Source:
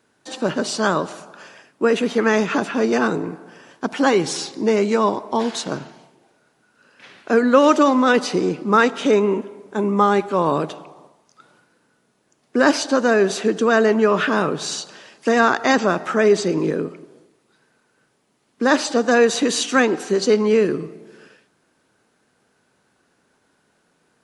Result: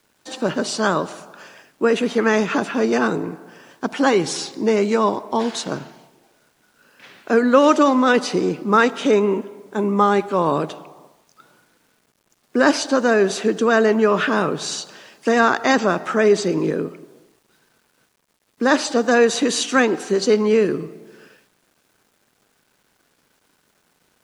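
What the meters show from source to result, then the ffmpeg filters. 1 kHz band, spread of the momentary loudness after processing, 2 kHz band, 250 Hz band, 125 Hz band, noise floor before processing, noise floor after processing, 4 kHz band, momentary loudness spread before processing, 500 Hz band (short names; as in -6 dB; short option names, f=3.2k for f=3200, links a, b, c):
0.0 dB, 11 LU, 0.0 dB, 0.0 dB, 0.0 dB, -65 dBFS, -65 dBFS, 0.0 dB, 11 LU, 0.0 dB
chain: -af "acrusher=bits=9:mix=0:aa=0.000001"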